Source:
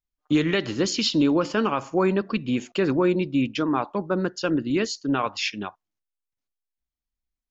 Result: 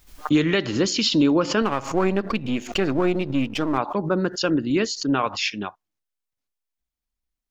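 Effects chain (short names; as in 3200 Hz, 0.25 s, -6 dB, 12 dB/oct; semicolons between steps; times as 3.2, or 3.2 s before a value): 1.62–3.78 half-wave gain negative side -7 dB; backwards sustainer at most 130 dB/s; gain +2 dB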